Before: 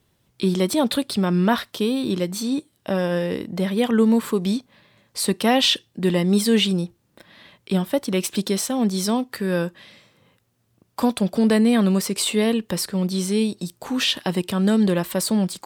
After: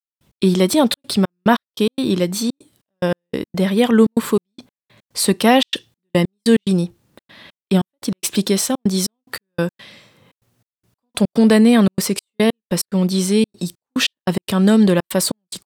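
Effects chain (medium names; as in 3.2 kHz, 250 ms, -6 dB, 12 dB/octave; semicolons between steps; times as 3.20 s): trance gate "..x.xxxxx.xx..x" 144 bpm -60 dB; trim +5.5 dB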